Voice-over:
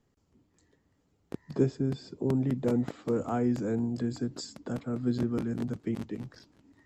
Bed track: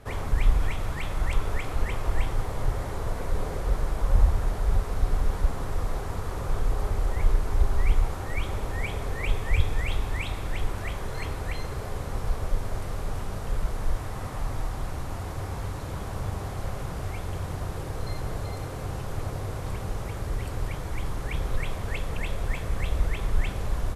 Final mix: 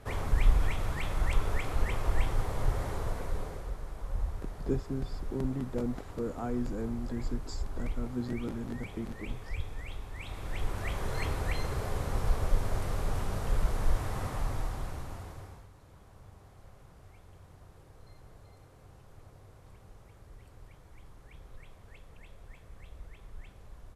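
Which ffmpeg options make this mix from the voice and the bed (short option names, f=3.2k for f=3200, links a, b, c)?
-filter_complex "[0:a]adelay=3100,volume=-6dB[a];[1:a]volume=10.5dB,afade=t=out:st=2.9:d=0.85:silence=0.281838,afade=t=in:st=10.14:d=0.99:silence=0.223872,afade=t=out:st=14.16:d=1.51:silence=0.0841395[b];[a][b]amix=inputs=2:normalize=0"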